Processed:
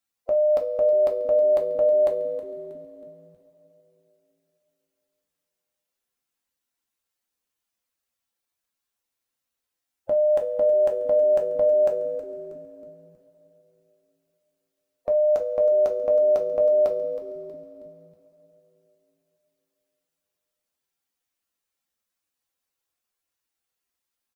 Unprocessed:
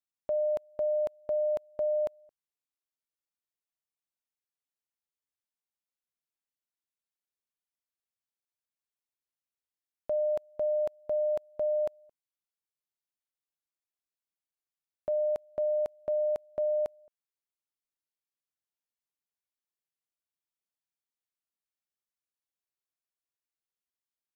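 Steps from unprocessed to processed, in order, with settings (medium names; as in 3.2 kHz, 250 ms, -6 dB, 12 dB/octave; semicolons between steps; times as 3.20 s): coarse spectral quantiser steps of 15 dB; frequency-shifting echo 319 ms, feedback 44%, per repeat -110 Hz, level -14.5 dB; two-slope reverb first 0.22 s, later 3.6 s, from -22 dB, DRR 2 dB; trim +8.5 dB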